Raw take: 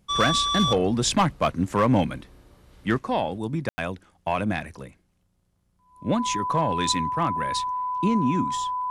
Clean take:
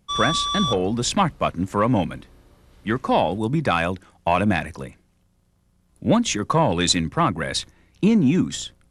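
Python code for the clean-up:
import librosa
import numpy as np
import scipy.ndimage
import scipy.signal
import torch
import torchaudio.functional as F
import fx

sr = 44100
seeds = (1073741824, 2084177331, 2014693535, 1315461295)

y = fx.fix_declip(x, sr, threshold_db=-13.0)
y = fx.notch(y, sr, hz=1000.0, q=30.0)
y = fx.fix_ambience(y, sr, seeds[0], print_start_s=5.26, print_end_s=5.76, start_s=3.69, end_s=3.78)
y = fx.fix_level(y, sr, at_s=2.99, step_db=6.0)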